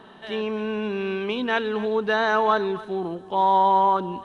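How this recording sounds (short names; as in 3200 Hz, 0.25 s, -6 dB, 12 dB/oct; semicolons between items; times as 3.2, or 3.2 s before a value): noise floor -47 dBFS; spectral tilt -3.0 dB/oct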